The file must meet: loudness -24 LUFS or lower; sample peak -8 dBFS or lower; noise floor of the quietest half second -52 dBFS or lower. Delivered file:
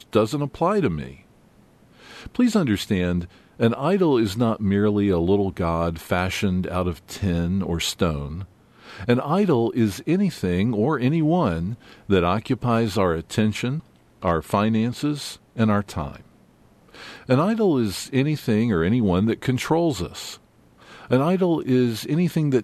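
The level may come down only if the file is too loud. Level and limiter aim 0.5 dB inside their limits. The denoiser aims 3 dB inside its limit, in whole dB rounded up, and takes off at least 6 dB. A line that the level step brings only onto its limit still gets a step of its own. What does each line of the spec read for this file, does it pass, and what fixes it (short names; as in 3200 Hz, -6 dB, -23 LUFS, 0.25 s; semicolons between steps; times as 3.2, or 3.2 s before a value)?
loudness -22.5 LUFS: fail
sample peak -7.0 dBFS: fail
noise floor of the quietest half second -55 dBFS: OK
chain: gain -2 dB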